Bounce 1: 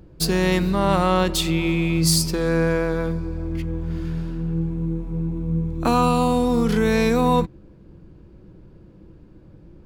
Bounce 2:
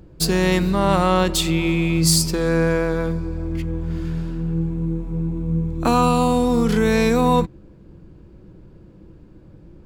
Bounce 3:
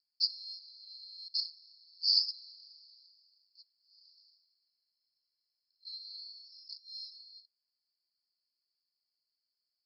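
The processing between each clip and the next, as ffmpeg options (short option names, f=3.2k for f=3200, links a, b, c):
-af "equalizer=f=7.5k:w=3.9:g=3.5,volume=1.5dB"
-af "asuperpass=centerf=4700:order=20:qfactor=3.9,volume=-3.5dB"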